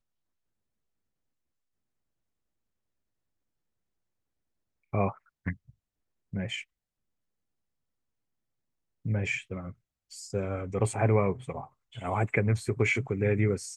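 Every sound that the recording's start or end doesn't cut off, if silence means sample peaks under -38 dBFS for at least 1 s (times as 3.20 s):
4.93–6.61 s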